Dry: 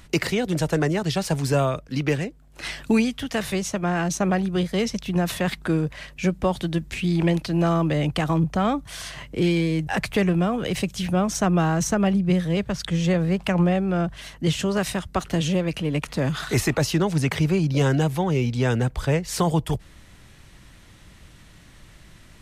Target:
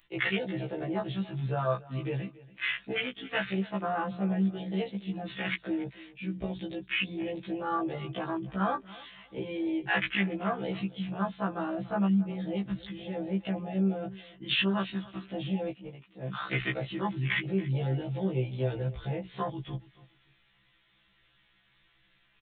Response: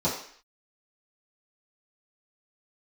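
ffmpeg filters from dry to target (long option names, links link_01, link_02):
-filter_complex "[0:a]aecho=1:1:5.9:0.6,alimiter=limit=-15.5dB:level=0:latency=1:release=21,tiltshelf=frequency=890:gain=-6.5,bandreject=frequency=60:width_type=h:width=6,bandreject=frequency=120:width_type=h:width=6,bandreject=frequency=180:width_type=h:width=6,bandreject=frequency=240:width_type=h:width=6,bandreject=frequency=300:width_type=h:width=6,bandreject=frequency=360:width_type=h:width=6,bandreject=frequency=420:width_type=h:width=6,bandreject=frequency=480:width_type=h:width=6,afwtdn=0.0562,aresample=8000,aresample=44100,aemphasis=mode=production:type=50fm,aecho=1:1:282|564:0.1|0.024,asplit=3[link_01][link_02][link_03];[link_01]afade=type=out:start_time=15.66:duration=0.02[link_04];[link_02]agate=range=-13dB:threshold=-27dB:ratio=16:detection=peak,afade=type=in:start_time=15.66:duration=0.02,afade=type=out:start_time=16.33:duration=0.02[link_05];[link_03]afade=type=in:start_time=16.33:duration=0.02[link_06];[link_04][link_05][link_06]amix=inputs=3:normalize=0,afftfilt=real='re*1.73*eq(mod(b,3),0)':imag='im*1.73*eq(mod(b,3),0)':win_size=2048:overlap=0.75"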